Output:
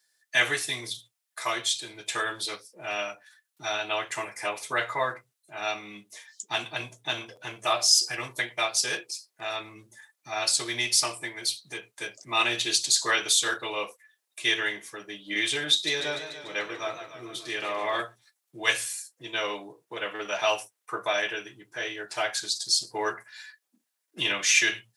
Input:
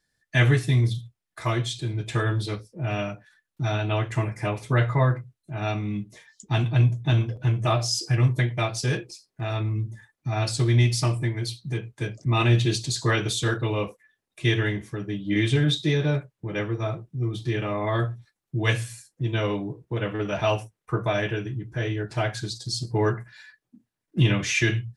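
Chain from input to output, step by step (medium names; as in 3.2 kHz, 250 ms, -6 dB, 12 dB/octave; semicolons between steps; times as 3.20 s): high-pass 620 Hz 12 dB/octave; treble shelf 3.8 kHz +10.5 dB; 15.72–18.02 s: modulated delay 146 ms, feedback 63%, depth 99 cents, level -10 dB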